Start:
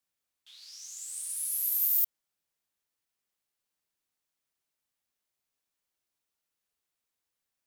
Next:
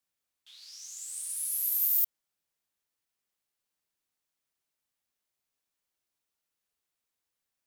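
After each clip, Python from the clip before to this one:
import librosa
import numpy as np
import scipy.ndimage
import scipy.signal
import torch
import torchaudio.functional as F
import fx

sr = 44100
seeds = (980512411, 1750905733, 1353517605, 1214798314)

y = x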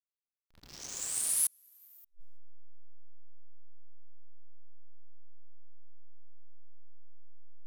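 y = fx.backlash(x, sr, play_db=-37.5)
y = fx.gate_flip(y, sr, shuts_db=-24.0, range_db=-38)
y = y * 10.0 ** (8.0 / 20.0)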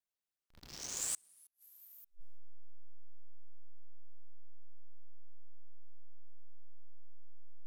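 y = fx.gate_flip(x, sr, shuts_db=-22.0, range_db=-34)
y = fx.vibrato(y, sr, rate_hz=0.83, depth_cents=18.0)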